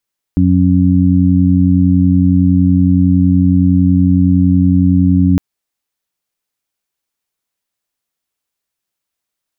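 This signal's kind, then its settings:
steady harmonic partials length 5.01 s, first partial 90.8 Hz, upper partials 1/0.5 dB, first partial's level −12 dB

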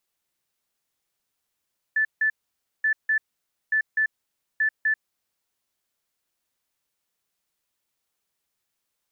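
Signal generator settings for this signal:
beeps in groups sine 1,750 Hz, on 0.09 s, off 0.16 s, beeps 2, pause 0.54 s, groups 4, −18.5 dBFS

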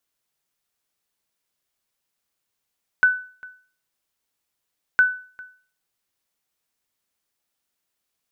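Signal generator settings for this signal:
ping with an echo 1,500 Hz, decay 0.42 s, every 1.96 s, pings 2, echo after 0.40 s, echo −24 dB −8.5 dBFS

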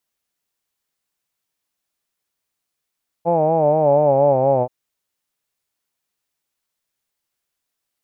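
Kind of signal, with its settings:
vowel by formant synthesis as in hawed, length 1.43 s, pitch 166 Hz, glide −4.5 semitones, vibrato 4.2 Hz, vibrato depth 0.8 semitones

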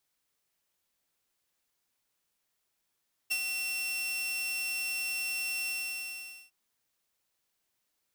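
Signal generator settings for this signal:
note with an ADSR envelope saw 2,710 Hz, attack 17 ms, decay 60 ms, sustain −5 dB, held 2.37 s, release 836 ms −24 dBFS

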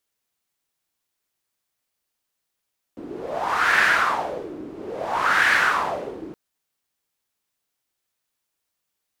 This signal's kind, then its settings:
wind from filtered noise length 3.37 s, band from 310 Hz, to 1,700 Hz, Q 4.5, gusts 2, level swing 18.5 dB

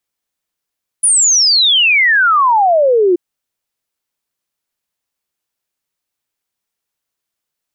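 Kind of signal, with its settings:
exponential sine sweep 10,000 Hz → 340 Hz 2.13 s −7.5 dBFS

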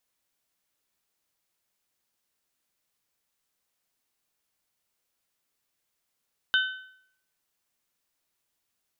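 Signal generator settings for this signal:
struck metal bell, lowest mode 1,520 Hz, modes 3, decay 0.66 s, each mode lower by 4 dB, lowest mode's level −19 dB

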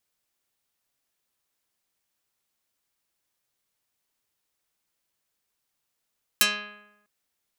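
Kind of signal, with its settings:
Karplus-Strong string G#3, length 0.65 s, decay 0.96 s, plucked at 0.44, dark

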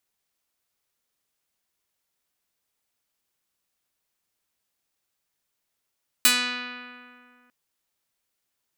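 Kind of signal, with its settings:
Karplus-Strong string B3, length 1.25 s, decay 2.35 s, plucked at 0.46, medium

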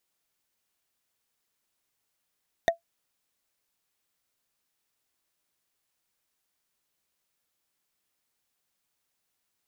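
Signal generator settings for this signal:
struck wood, lowest mode 674 Hz, decay 0.12 s, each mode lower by 4.5 dB, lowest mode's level −14 dB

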